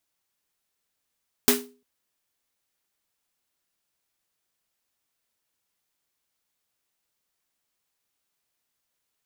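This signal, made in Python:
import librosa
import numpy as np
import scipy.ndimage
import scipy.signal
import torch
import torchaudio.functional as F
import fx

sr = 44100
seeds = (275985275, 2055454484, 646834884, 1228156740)

y = fx.drum_snare(sr, seeds[0], length_s=0.35, hz=250.0, second_hz=410.0, noise_db=3.5, noise_from_hz=620.0, decay_s=0.38, noise_decay_s=0.26)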